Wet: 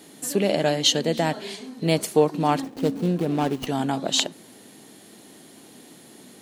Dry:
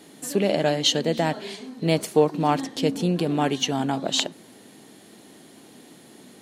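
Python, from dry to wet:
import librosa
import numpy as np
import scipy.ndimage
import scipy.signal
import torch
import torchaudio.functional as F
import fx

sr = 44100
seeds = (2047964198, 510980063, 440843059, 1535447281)

y = fx.median_filter(x, sr, points=25, at=(2.62, 3.67))
y = fx.high_shelf(y, sr, hz=5900.0, db=5.0)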